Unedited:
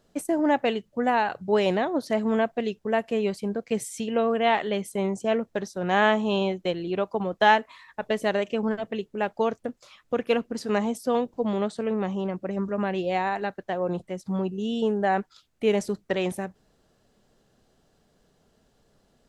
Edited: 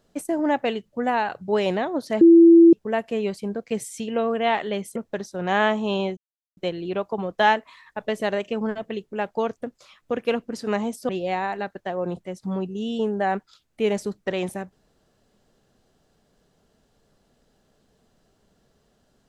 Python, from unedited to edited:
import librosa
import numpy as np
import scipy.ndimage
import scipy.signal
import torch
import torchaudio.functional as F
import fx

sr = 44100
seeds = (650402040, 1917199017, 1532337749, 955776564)

y = fx.edit(x, sr, fx.bleep(start_s=2.21, length_s=0.52, hz=335.0, db=-7.5),
    fx.cut(start_s=4.96, length_s=0.42),
    fx.insert_silence(at_s=6.59, length_s=0.4),
    fx.cut(start_s=11.11, length_s=1.81), tone=tone)